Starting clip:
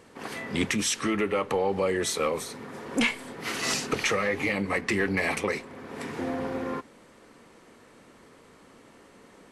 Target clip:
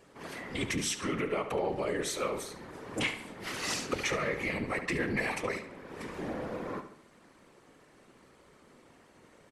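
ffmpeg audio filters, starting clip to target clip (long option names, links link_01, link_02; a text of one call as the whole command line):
ffmpeg -i in.wav -filter_complex "[0:a]afftfilt=real='hypot(re,im)*cos(2*PI*random(0))':imag='hypot(re,im)*sin(2*PI*random(1))':win_size=512:overlap=0.75,asplit=2[link_01][link_02];[link_02]adelay=71,lowpass=frequency=4600:poles=1,volume=-10dB,asplit=2[link_03][link_04];[link_04]adelay=71,lowpass=frequency=4600:poles=1,volume=0.46,asplit=2[link_05][link_06];[link_06]adelay=71,lowpass=frequency=4600:poles=1,volume=0.46,asplit=2[link_07][link_08];[link_08]adelay=71,lowpass=frequency=4600:poles=1,volume=0.46,asplit=2[link_09][link_10];[link_10]adelay=71,lowpass=frequency=4600:poles=1,volume=0.46[link_11];[link_01][link_03][link_05][link_07][link_09][link_11]amix=inputs=6:normalize=0" out.wav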